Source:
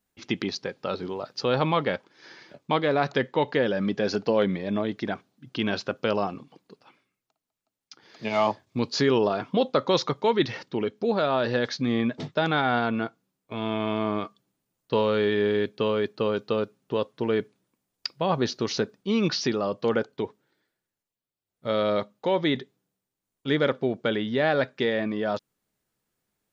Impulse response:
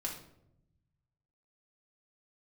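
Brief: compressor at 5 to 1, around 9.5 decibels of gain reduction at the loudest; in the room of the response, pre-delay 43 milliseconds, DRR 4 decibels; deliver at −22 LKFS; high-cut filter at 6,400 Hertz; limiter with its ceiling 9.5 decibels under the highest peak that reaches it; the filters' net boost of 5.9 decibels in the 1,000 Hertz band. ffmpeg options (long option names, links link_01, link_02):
-filter_complex "[0:a]lowpass=6400,equalizer=frequency=1000:width_type=o:gain=7.5,acompressor=threshold=-25dB:ratio=5,alimiter=limit=-20dB:level=0:latency=1,asplit=2[link_01][link_02];[1:a]atrim=start_sample=2205,adelay=43[link_03];[link_02][link_03]afir=irnorm=-1:irlink=0,volume=-5dB[link_04];[link_01][link_04]amix=inputs=2:normalize=0,volume=9.5dB"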